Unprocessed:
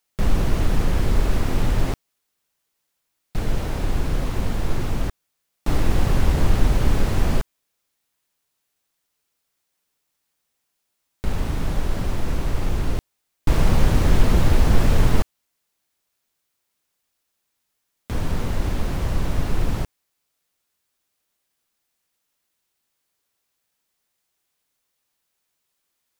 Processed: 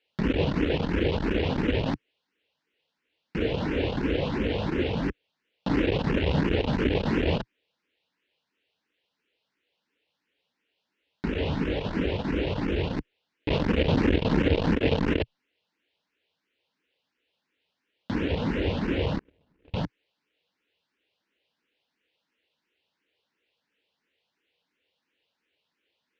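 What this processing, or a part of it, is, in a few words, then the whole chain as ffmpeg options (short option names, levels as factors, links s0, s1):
barber-pole phaser into a guitar amplifier: -filter_complex "[0:a]asplit=2[s0][s1];[s1]afreqshift=2.9[s2];[s0][s2]amix=inputs=2:normalize=1,asoftclip=type=tanh:threshold=0.133,highpass=98,equalizer=f=120:t=q:w=4:g=-9,equalizer=f=290:t=q:w=4:g=4,equalizer=f=470:t=q:w=4:g=6,equalizer=f=730:t=q:w=4:g=-5,equalizer=f=1200:t=q:w=4:g=-9,equalizer=f=2800:t=q:w=4:g=5,lowpass=f=3900:w=0.5412,lowpass=f=3900:w=1.3066,asettb=1/sr,asplit=3[s3][s4][s5];[s3]atrim=end=19.194[s6];[s4]atrim=start=19.19:end=19.74,asetpts=PTS-STARTPTS,afade=t=in:d=0.004:c=qsin,afade=t=out:st=0.546:d=0.004:c=qsin,agate=range=0.00891:threshold=0.0447:ratio=16:detection=peak[s7];[s5]atrim=start=19.736[s8];[s6][s7]acrossfade=d=0.004:c1=hsin:c2=qsin[s9];[s9][s8]acrossfade=d=0.004:c1=qsin:c2=hsin,volume=2.11"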